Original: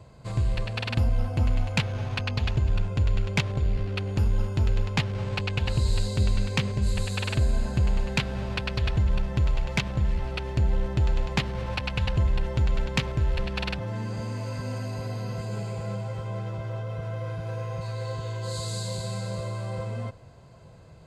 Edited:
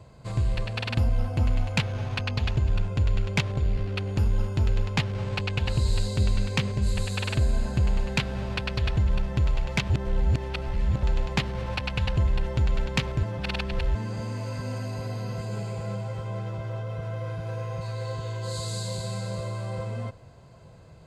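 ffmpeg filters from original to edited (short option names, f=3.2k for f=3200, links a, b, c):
-filter_complex "[0:a]asplit=5[a][b][c][d][e];[a]atrim=end=9.902[f];[b]atrim=start=9.898:end=11.032,asetpts=PTS-STARTPTS,areverse[g];[c]atrim=start=11.028:end=13.232[h];[d]atrim=start=13.228:end=13.952,asetpts=PTS-STARTPTS,areverse[i];[e]atrim=start=13.948[j];[f][g]acrossfade=d=0.004:c1=hsin:c2=hsin[k];[k][h]acrossfade=d=0.004:c1=hsin:c2=hsin[l];[l][i]acrossfade=d=0.004:c1=hsin:c2=hsin[m];[m][j]acrossfade=d=0.004:c1=hsin:c2=hsin"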